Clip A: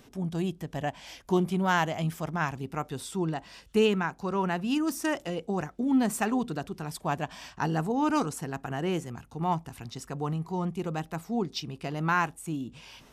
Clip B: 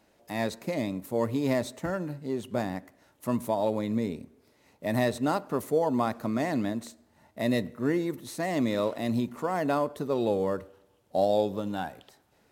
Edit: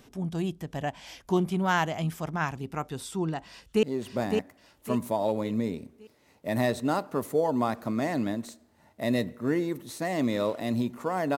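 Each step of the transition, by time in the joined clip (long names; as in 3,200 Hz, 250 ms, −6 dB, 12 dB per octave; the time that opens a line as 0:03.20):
clip A
0:03.45–0:03.83: delay throw 560 ms, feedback 40%, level −4 dB
0:03.83: continue with clip B from 0:02.21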